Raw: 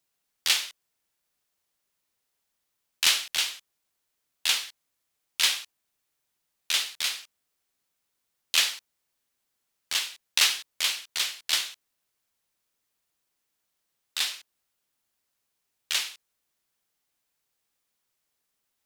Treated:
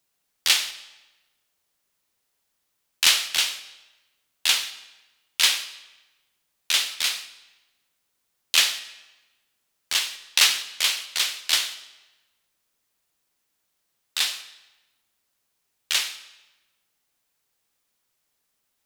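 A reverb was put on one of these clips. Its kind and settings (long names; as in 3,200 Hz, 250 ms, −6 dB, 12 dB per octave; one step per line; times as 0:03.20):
comb and all-pass reverb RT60 1.1 s, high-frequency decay 0.9×, pre-delay 45 ms, DRR 14.5 dB
level +4 dB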